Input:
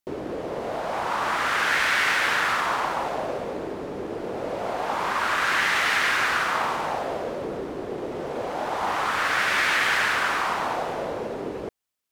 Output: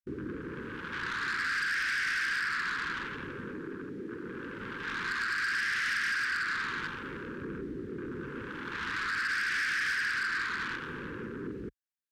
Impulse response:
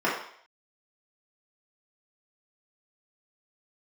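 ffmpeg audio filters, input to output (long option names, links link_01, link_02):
-filter_complex "[0:a]asettb=1/sr,asplit=3[link_01][link_02][link_03];[link_01]atrim=end=3.544[link_04];[link_02]atrim=start=3.54:end=4.58,asetpts=PTS-STARTPTS,afade=type=in:duration=0.004:curve=qsin,afade=type=out:start_time=1.036:duration=0.004:curve=qsin,highpass=frequency=180:poles=1[link_05];[link_03]atrim=start=4.576[link_06];[link_04][link_05]acrossfade=duration=0.004:curve1=hsin:curve2=qsin[link_07];[link_07][link_06]acrossfade=duration=0.004:curve1=qsin:curve2=hsin,afwtdn=0.0251,equalizer=frequency=1600:width_type=o:width=0.37:gain=12,acompressor=threshold=-22dB:ratio=6,asoftclip=type=tanh:threshold=-25.5dB,asuperstop=centerf=690:order=4:qfactor=0.63"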